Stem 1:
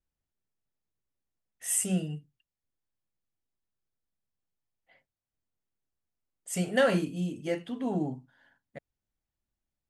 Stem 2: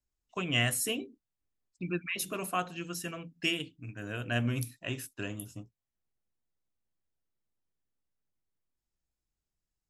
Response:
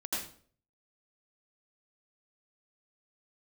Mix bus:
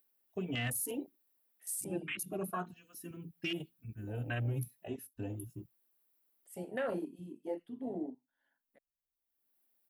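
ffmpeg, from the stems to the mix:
-filter_complex "[0:a]highpass=f=240:w=0.5412,highpass=f=240:w=1.3066,equalizer=f=6.4k:t=o:w=0.32:g=-5.5,acompressor=mode=upward:threshold=-43dB:ratio=2.5,volume=-6dB[a];[1:a]asplit=2[b][c];[c]adelay=3.2,afreqshift=0.88[d];[b][d]amix=inputs=2:normalize=1,volume=1.5dB[e];[a][e]amix=inputs=2:normalize=0,aexciter=amount=5.7:drive=4.5:freq=10k,afwtdn=0.0178,alimiter=level_in=3dB:limit=-24dB:level=0:latency=1:release=50,volume=-3dB"

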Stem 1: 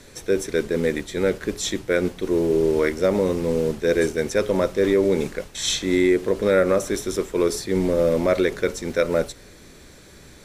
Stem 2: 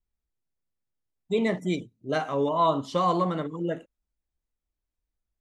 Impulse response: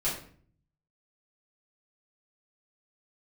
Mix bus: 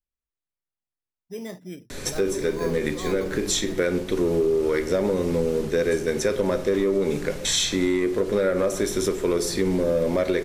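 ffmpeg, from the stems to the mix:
-filter_complex "[0:a]acontrast=87,adelay=1900,volume=2dB,asplit=2[a][b];[b]volume=-14.5dB[c];[1:a]acrossover=split=3200[d][e];[e]acompressor=threshold=-58dB:ratio=4:attack=1:release=60[f];[d][f]amix=inputs=2:normalize=0,acrusher=samples=8:mix=1:aa=0.000001,volume=-10dB,asplit=2[g][h];[h]apad=whole_len=544464[i];[a][i]sidechaincompress=threshold=-41dB:ratio=8:attack=5.6:release=127[j];[2:a]atrim=start_sample=2205[k];[c][k]afir=irnorm=-1:irlink=0[l];[j][g][l]amix=inputs=3:normalize=0,acompressor=threshold=-22dB:ratio=4"

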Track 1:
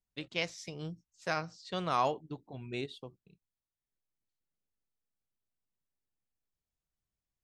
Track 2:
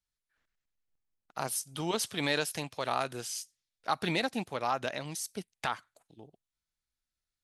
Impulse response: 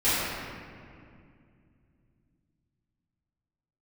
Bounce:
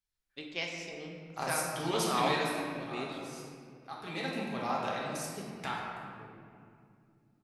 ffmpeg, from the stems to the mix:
-filter_complex "[0:a]equalizer=f=93:t=o:w=1.3:g=-13.5,adelay=200,volume=-4dB,asplit=2[a][b];[b]volume=-14.5dB[c];[1:a]volume=2.5dB,afade=t=out:st=2.09:d=0.54:silence=0.251189,afade=t=in:st=4.01:d=0.37:silence=0.334965,asplit=2[d][e];[e]volume=-8.5dB[f];[2:a]atrim=start_sample=2205[g];[c][f]amix=inputs=2:normalize=0[h];[h][g]afir=irnorm=-1:irlink=0[i];[a][d][i]amix=inputs=3:normalize=0"

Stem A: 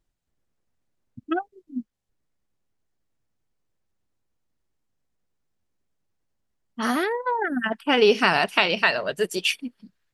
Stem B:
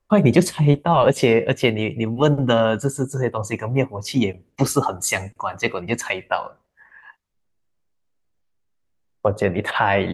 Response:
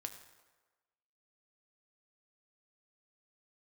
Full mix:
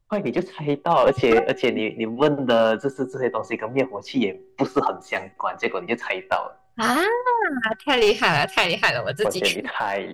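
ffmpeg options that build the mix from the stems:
-filter_complex "[0:a]lowshelf=f=170:t=q:w=3:g=8,volume=-1dB[a];[1:a]deesser=0.65,acrossover=split=210 4700:gain=0.0631 1 0.0891[b][c][d];[b][c][d]amix=inputs=3:normalize=0,volume=-6dB[e];[a][e]amix=inputs=2:normalize=0,bandreject=f=381.4:t=h:w=4,bandreject=f=762.8:t=h:w=4,bandreject=f=1.1442k:t=h:w=4,bandreject=f=1.5256k:t=h:w=4,bandreject=f=1.907k:t=h:w=4,aeval=exprs='clip(val(0),-1,0.126)':c=same,dynaudnorm=f=200:g=7:m=7dB"

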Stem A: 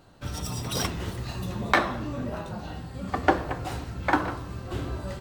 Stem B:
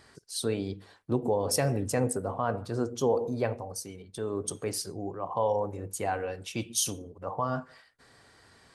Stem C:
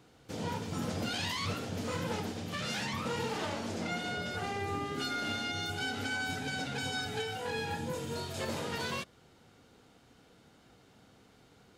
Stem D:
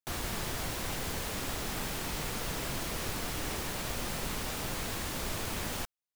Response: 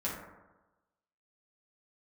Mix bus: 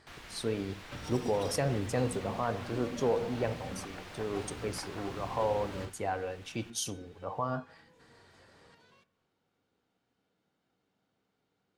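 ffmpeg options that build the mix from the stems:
-filter_complex "[0:a]acompressor=threshold=-33dB:ratio=6,adelay=700,volume=-2dB[a];[1:a]volume=-3dB[b];[2:a]acompressor=threshold=-43dB:ratio=4,volume=-18.5dB,asplit=2[c][d];[d]volume=-15.5dB[e];[3:a]equalizer=f=2.3k:t=o:w=2.6:g=9.5,volume=-17dB,asplit=2[f][g];[g]volume=-8.5dB[h];[a][c]amix=inputs=2:normalize=0,highpass=f=150:p=1,alimiter=level_in=8.5dB:limit=-24dB:level=0:latency=1:release=273,volume=-8.5dB,volume=0dB[i];[4:a]atrim=start_sample=2205[j];[e][j]afir=irnorm=-1:irlink=0[k];[h]aecho=0:1:851|1702|2553|3404|4255:1|0.32|0.102|0.0328|0.0105[l];[b][f][i][k][l]amix=inputs=5:normalize=0,highshelf=f=8.1k:g=-11.5"

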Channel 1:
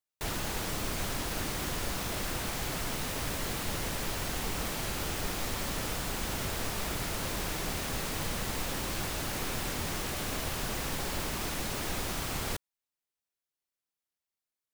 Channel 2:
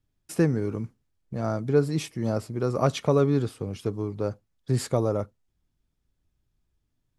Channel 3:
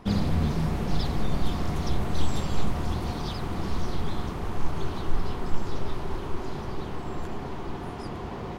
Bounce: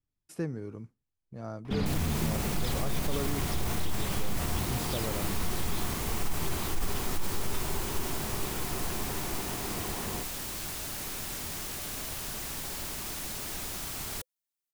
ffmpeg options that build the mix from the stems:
-filter_complex "[0:a]highshelf=f=4.7k:g=9.5,bandreject=f=510:w=12,adelay=1650,volume=-6.5dB[a];[1:a]volume=-11.5dB[b];[2:a]equalizer=f=2.4k:t=o:w=1.1:g=6.5,adelay=1650,volume=-3dB[c];[a][b][c]amix=inputs=3:normalize=0,alimiter=limit=-20dB:level=0:latency=1:release=35"

